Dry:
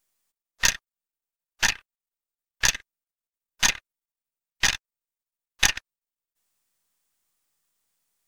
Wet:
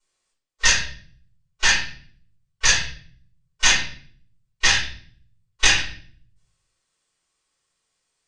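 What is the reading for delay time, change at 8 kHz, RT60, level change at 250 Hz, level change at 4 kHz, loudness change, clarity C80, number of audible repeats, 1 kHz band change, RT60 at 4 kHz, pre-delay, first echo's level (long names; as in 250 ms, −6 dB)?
no echo audible, +4.0 dB, 0.50 s, +4.0 dB, +6.0 dB, +4.5 dB, 9.5 dB, no echo audible, +5.0 dB, 0.50 s, 3 ms, no echo audible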